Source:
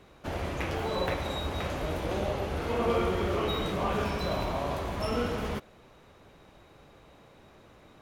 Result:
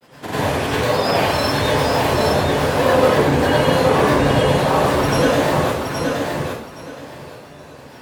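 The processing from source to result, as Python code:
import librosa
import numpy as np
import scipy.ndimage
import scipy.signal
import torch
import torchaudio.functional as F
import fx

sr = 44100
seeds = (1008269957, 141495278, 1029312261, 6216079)

p1 = scipy.signal.sosfilt(scipy.signal.butter(2, 120.0, 'highpass', fs=sr, output='sos'), x)
p2 = fx.peak_eq(p1, sr, hz=10000.0, db=7.5, octaves=1.0)
p3 = fx.rider(p2, sr, range_db=5, speed_s=0.5)
p4 = p2 + F.gain(torch.from_numpy(p3), -1.0).numpy()
p5 = fx.granulator(p4, sr, seeds[0], grain_ms=100.0, per_s=20.0, spray_ms=29.0, spread_st=7)
p6 = p5 + fx.echo_feedback(p5, sr, ms=820, feedback_pct=20, wet_db=-4.0, dry=0)
y = fx.rev_plate(p6, sr, seeds[1], rt60_s=0.56, hf_ratio=0.85, predelay_ms=80, drr_db=-8.5)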